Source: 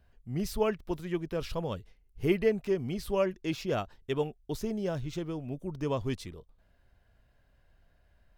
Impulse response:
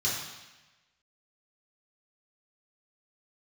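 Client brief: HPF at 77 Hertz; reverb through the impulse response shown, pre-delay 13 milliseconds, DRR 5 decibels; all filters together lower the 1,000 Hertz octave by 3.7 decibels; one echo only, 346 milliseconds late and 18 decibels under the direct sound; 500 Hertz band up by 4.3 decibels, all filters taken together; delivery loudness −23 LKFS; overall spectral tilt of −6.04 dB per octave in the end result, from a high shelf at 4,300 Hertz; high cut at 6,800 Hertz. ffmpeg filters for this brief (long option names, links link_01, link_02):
-filter_complex "[0:a]highpass=77,lowpass=6800,equalizer=frequency=500:width_type=o:gain=7,equalizer=frequency=1000:width_type=o:gain=-8.5,highshelf=frequency=4300:gain=8.5,aecho=1:1:346:0.126,asplit=2[link_01][link_02];[1:a]atrim=start_sample=2205,adelay=13[link_03];[link_02][link_03]afir=irnorm=-1:irlink=0,volume=-13.5dB[link_04];[link_01][link_04]amix=inputs=2:normalize=0,volume=5.5dB"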